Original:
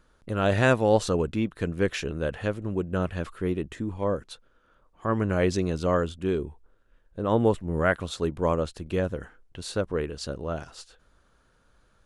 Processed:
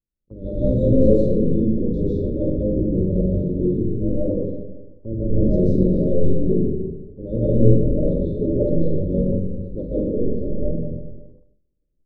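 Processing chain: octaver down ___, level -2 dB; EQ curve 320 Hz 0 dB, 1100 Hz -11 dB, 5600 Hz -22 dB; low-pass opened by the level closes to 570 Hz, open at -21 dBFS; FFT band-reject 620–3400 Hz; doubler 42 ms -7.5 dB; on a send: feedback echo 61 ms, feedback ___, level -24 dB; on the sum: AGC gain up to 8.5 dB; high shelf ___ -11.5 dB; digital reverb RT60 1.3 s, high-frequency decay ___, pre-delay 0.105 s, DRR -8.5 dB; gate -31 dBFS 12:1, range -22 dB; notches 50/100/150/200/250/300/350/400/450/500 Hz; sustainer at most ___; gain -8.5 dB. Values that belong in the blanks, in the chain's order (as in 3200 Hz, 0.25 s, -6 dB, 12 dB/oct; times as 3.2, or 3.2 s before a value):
1 oct, 40%, 4500 Hz, 0.55×, 73 dB/s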